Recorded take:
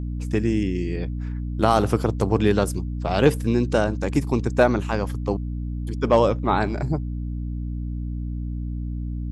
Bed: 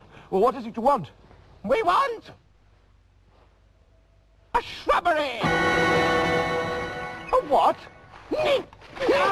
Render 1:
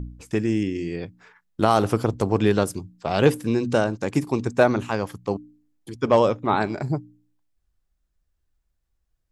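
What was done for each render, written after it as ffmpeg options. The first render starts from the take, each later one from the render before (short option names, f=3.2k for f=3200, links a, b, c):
-af "bandreject=f=60:t=h:w=4,bandreject=f=120:t=h:w=4,bandreject=f=180:t=h:w=4,bandreject=f=240:t=h:w=4,bandreject=f=300:t=h:w=4"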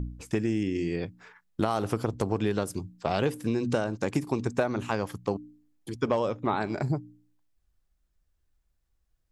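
-af "acompressor=threshold=-23dB:ratio=6"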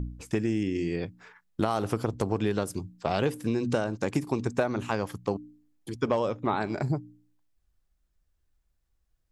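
-af anull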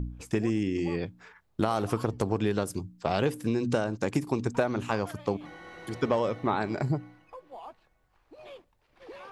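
-filter_complex "[1:a]volume=-25dB[a];[0:a][a]amix=inputs=2:normalize=0"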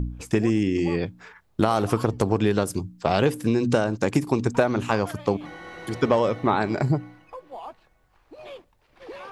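-af "volume=6dB"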